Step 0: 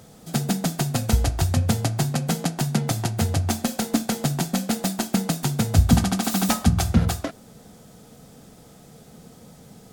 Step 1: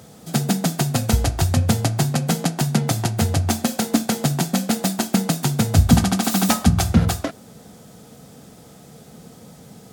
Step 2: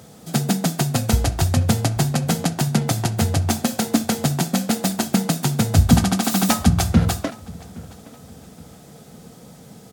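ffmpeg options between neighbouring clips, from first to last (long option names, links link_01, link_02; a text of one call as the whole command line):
ffmpeg -i in.wav -af "highpass=63,volume=3.5dB" out.wav
ffmpeg -i in.wav -filter_complex "[0:a]asplit=2[link_01][link_02];[link_02]adelay=819,lowpass=frequency=4000:poles=1,volume=-21.5dB,asplit=2[link_03][link_04];[link_04]adelay=819,lowpass=frequency=4000:poles=1,volume=0.39,asplit=2[link_05][link_06];[link_06]adelay=819,lowpass=frequency=4000:poles=1,volume=0.39[link_07];[link_01][link_03][link_05][link_07]amix=inputs=4:normalize=0" out.wav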